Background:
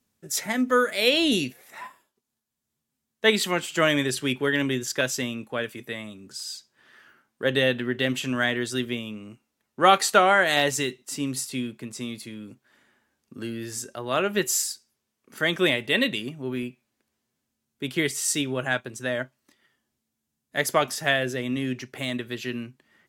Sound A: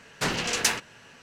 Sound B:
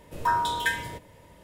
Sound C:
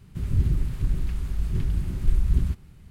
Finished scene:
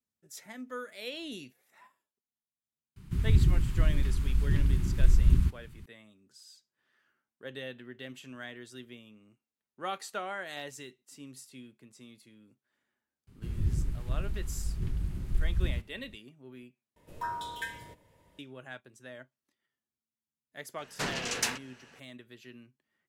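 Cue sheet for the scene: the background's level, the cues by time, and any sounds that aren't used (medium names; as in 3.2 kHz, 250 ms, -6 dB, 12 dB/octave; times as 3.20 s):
background -19 dB
2.96 s: add C -0.5 dB + high-order bell 580 Hz -8.5 dB 1 oct
13.27 s: add C -7.5 dB
16.96 s: replace with B -11.5 dB
20.78 s: add A -6.5 dB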